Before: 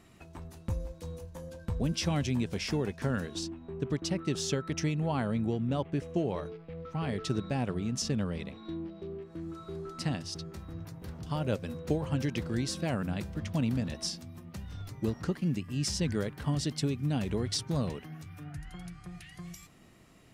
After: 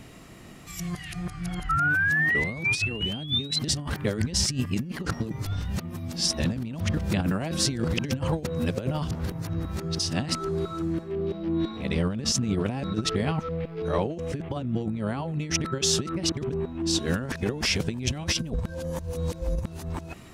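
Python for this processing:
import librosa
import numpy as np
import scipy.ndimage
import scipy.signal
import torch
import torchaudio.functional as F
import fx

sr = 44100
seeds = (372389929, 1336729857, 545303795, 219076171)

y = np.flip(x).copy()
y = fx.spec_paint(y, sr, seeds[0], shape='rise', start_s=1.69, length_s=1.9, low_hz=1300.0, high_hz=4100.0, level_db=-35.0)
y = fx.over_compress(y, sr, threshold_db=-34.0, ratio=-0.5)
y = y * librosa.db_to_amplitude(8.5)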